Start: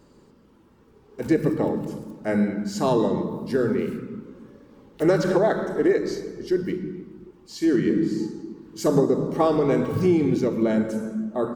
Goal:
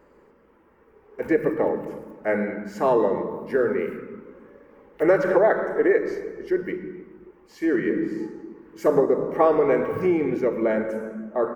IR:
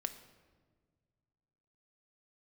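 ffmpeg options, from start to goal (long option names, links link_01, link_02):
-af "equalizer=frequency=125:width_type=o:width=1:gain=-8,equalizer=frequency=250:width_type=o:width=1:gain=-3,equalizer=frequency=500:width_type=o:width=1:gain=7,equalizer=frequency=1000:width_type=o:width=1:gain=3,equalizer=frequency=2000:width_type=o:width=1:gain=11,equalizer=frequency=4000:width_type=o:width=1:gain=-12,equalizer=frequency=8000:width_type=o:width=1:gain=-8,volume=-3dB"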